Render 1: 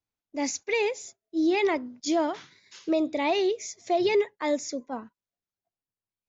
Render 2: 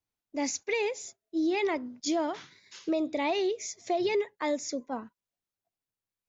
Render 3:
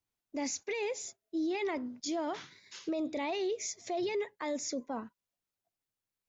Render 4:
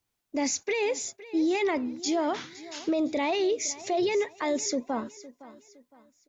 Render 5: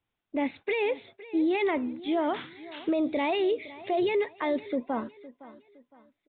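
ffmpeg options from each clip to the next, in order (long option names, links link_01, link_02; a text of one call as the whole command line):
ffmpeg -i in.wav -af "acompressor=threshold=-28dB:ratio=2" out.wav
ffmpeg -i in.wav -af "alimiter=level_in=3.5dB:limit=-24dB:level=0:latency=1:release=11,volume=-3.5dB" out.wav
ffmpeg -i in.wav -af "aecho=1:1:512|1024|1536:0.126|0.0453|0.0163,volume=7.5dB" out.wav
ffmpeg -i in.wav -af "aresample=8000,aresample=44100" out.wav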